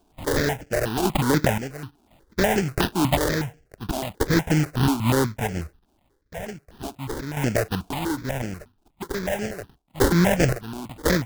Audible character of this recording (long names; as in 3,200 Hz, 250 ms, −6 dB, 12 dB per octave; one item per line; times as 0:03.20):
sample-and-hold tremolo 1.9 Hz, depth 85%
aliases and images of a low sample rate 1,200 Hz, jitter 20%
notches that jump at a steady rate 8.2 Hz 510–3,800 Hz